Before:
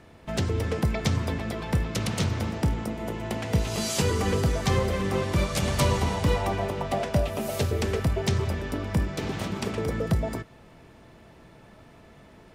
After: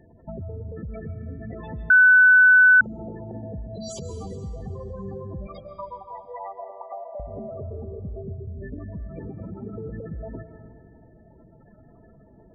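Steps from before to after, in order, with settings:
gate on every frequency bin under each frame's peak −10 dB strong
0:04.27–0:04.74: parametric band 1,100 Hz −14.5 dB 0.84 octaves
0:05.47–0:07.20: high-pass filter 650 Hz 24 dB per octave
brickwall limiter −23.5 dBFS, peak gain reduction 8.5 dB
downward compressor 3 to 1, threshold −33 dBFS, peak gain reduction 5.5 dB
convolution reverb RT60 2.0 s, pre-delay 95 ms, DRR 8.5 dB
0:01.90–0:02.81: beep over 1,500 Hz −10 dBFS

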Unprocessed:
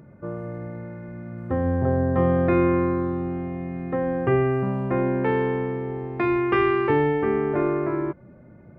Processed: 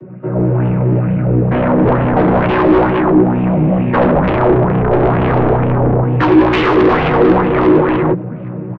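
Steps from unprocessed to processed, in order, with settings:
channel vocoder with a chord as carrier major triad, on B2
0:04.16–0:06.04: spectral tilt −3.5 dB per octave
in parallel at −2 dB: downward compressor, threshold −30 dBFS, peak gain reduction 20 dB
on the sum: brickwall limiter −11 dBFS, peak gain reduction 10 dB
automatic gain control gain up to 10.5 dB
soft clipping −12 dBFS, distortion −10 dB
multi-voice chorus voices 4, 0.93 Hz, delay 13 ms, depth 4.4 ms
sine wavefolder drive 10 dB, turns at −8.5 dBFS
slap from a distant wall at 140 metres, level −24 dB
auto-filter bell 2.2 Hz 300–3,000 Hz +9 dB
level −2 dB

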